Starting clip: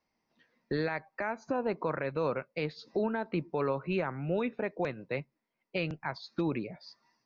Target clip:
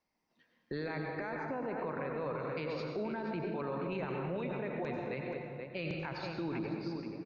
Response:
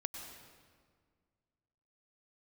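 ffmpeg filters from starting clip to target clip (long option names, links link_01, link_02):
-filter_complex "[0:a]asplit=2[link_01][link_02];[link_02]adelay=478.1,volume=-8dB,highshelf=frequency=4000:gain=-10.8[link_03];[link_01][link_03]amix=inputs=2:normalize=0[link_04];[1:a]atrim=start_sample=2205,asetrate=48510,aresample=44100[link_05];[link_04][link_05]afir=irnorm=-1:irlink=0,alimiter=level_in=5dB:limit=-24dB:level=0:latency=1:release=32,volume=-5dB,asettb=1/sr,asplit=3[link_06][link_07][link_08];[link_06]atrim=end=1.354[link_09];[link_07]atrim=start=1.35:end=2.4,asetpts=PTS-STARTPTS,afade=type=in:duration=0.004:curve=qsin,afade=type=out:start_time=1.046:duration=0.004:curve=qsin,lowpass=3100[link_10];[link_08]atrim=start=2.396[link_11];[link_09][link_10]acrossfade=duration=0.004:curve1=hsin:curve2=qsin[link_12];[link_12][link_11]acrossfade=duration=0.004:curve1=qsin:curve2=hsin"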